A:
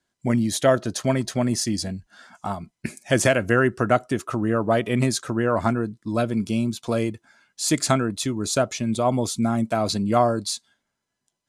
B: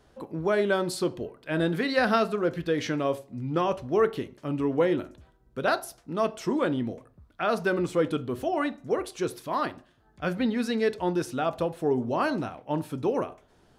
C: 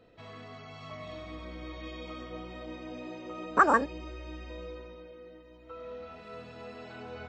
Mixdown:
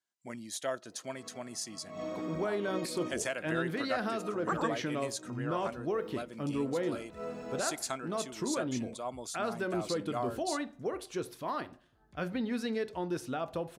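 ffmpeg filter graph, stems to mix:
ffmpeg -i stem1.wav -i stem2.wav -i stem3.wav -filter_complex "[0:a]highpass=frequency=680:poles=1,equalizer=frequency=7100:width_type=o:width=0.77:gain=2.5,volume=-13.5dB,asplit=2[link_01][link_02];[1:a]alimiter=limit=-20dB:level=0:latency=1:release=167,adelay=1950,volume=-5dB[link_03];[2:a]tiltshelf=frequency=1500:gain=7.5,aexciter=amount=5.2:drive=7.6:freq=5700,highpass=frequency=170:width=0.5412,highpass=frequency=170:width=1.3066,adelay=900,volume=0.5dB[link_04];[link_02]apad=whole_len=361037[link_05];[link_04][link_05]sidechaincompress=threshold=-56dB:ratio=8:attack=16:release=121[link_06];[link_01][link_03][link_06]amix=inputs=3:normalize=0" out.wav

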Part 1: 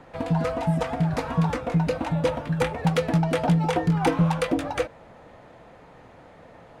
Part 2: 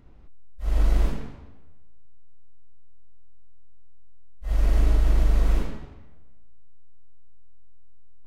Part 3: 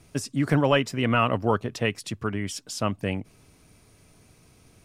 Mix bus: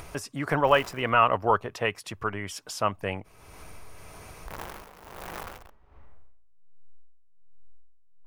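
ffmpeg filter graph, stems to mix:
ffmpeg -i stem1.wav -i stem2.wav -i stem3.wav -filter_complex "[1:a]aeval=exprs='(mod(11.2*val(0)+1,2)-1)/11.2':channel_layout=same,aeval=exprs='val(0)*pow(10,-23*(0.5-0.5*cos(2*PI*1.3*n/s))/20)':channel_layout=same,volume=-12dB[link_01];[2:a]volume=1dB[link_02];[link_01][link_02]amix=inputs=2:normalize=0,equalizer=frequency=125:width_type=o:width=1:gain=-8,equalizer=frequency=250:width_type=o:width=1:gain=-10,equalizer=frequency=1000:width_type=o:width=1:gain=5,equalizer=frequency=4000:width_type=o:width=1:gain=-5,equalizer=frequency=8000:width_type=o:width=1:gain=-6,acompressor=mode=upward:threshold=-32dB:ratio=2.5" out.wav

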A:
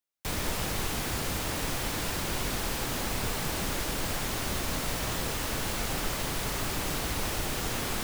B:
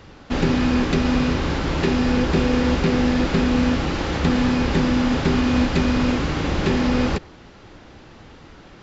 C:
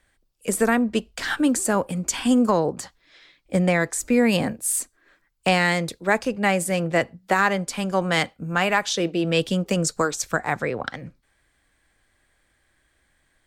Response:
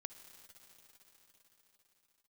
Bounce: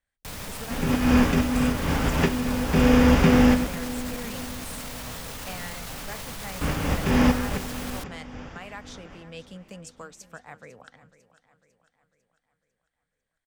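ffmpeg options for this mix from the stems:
-filter_complex "[0:a]alimiter=level_in=4.5dB:limit=-24dB:level=0:latency=1,volume=-4.5dB,acrusher=bits=8:dc=4:mix=0:aa=0.000001,volume=1dB[link_01];[1:a]equalizer=frequency=4100:width_type=o:width=0.25:gain=-14.5,adelay=400,volume=2.5dB,asplit=3[link_02][link_03][link_04];[link_02]atrim=end=3.67,asetpts=PTS-STARTPTS,afade=type=out:start_time=3.666:duration=0.004:curve=hsin[link_05];[link_03]atrim=start=3.67:end=6.61,asetpts=PTS-STARTPTS,volume=0[link_06];[link_04]atrim=start=6.61,asetpts=PTS-STARTPTS,afade=type=in:duration=0.004:curve=hsin[link_07];[link_05][link_06][link_07]concat=n=3:v=0:a=1,asplit=2[link_08][link_09];[link_09]volume=-18.5dB[link_10];[2:a]volume=-19.5dB,asplit=3[link_11][link_12][link_13];[link_12]volume=-15.5dB[link_14];[link_13]apad=whole_len=406931[link_15];[link_08][link_15]sidechaincompress=threshold=-47dB:ratio=8:attack=42:release=208[link_16];[link_10][link_14]amix=inputs=2:normalize=0,aecho=0:1:499|998|1497|1996|2495|2994|3493:1|0.48|0.23|0.111|0.0531|0.0255|0.0122[link_17];[link_01][link_16][link_11][link_17]amix=inputs=4:normalize=0,equalizer=frequency=350:width_type=o:width=0.25:gain=-10.5"

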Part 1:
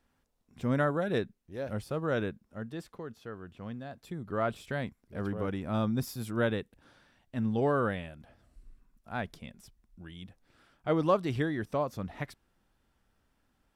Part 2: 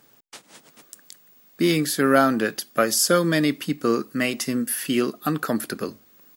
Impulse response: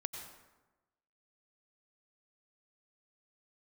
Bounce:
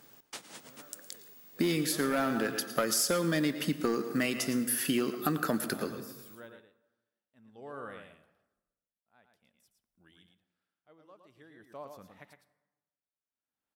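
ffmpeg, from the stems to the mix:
-filter_complex "[0:a]highpass=frequency=390:poles=1,highshelf=frequency=12000:gain=11.5,aeval=exprs='val(0)*pow(10,-20*(0.5-0.5*cos(2*PI*0.5*n/s))/20)':channel_layout=same,volume=-13.5dB,asplit=4[link_01][link_02][link_03][link_04];[link_02]volume=-6.5dB[link_05];[link_03]volume=-3.5dB[link_06];[1:a]acrusher=bits=7:mode=log:mix=0:aa=0.000001,asoftclip=type=hard:threshold=-13.5dB,volume=-4dB,asplit=3[link_07][link_08][link_09];[link_08]volume=-5.5dB[link_10];[link_09]volume=-15dB[link_11];[link_04]apad=whole_len=280785[link_12];[link_07][link_12]sidechaincompress=threshold=-52dB:ratio=8:attack=16:release=855[link_13];[2:a]atrim=start_sample=2205[link_14];[link_05][link_10]amix=inputs=2:normalize=0[link_15];[link_15][link_14]afir=irnorm=-1:irlink=0[link_16];[link_06][link_11]amix=inputs=2:normalize=0,aecho=0:1:112:1[link_17];[link_01][link_13][link_16][link_17]amix=inputs=4:normalize=0,acompressor=threshold=-26dB:ratio=5"

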